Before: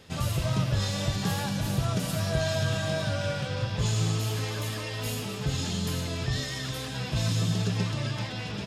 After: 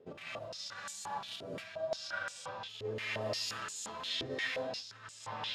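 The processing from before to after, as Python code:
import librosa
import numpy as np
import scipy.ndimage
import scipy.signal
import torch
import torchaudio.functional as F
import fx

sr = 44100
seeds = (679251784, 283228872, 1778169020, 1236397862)

y = fx.over_compress(x, sr, threshold_db=-32.0, ratio=-0.5)
y = fx.rev_gated(y, sr, seeds[0], gate_ms=430, shape='rising', drr_db=-6.0)
y = fx.stretch_vocoder(y, sr, factor=0.64)
y = fx.filter_held_bandpass(y, sr, hz=5.7, low_hz=420.0, high_hz=7700.0)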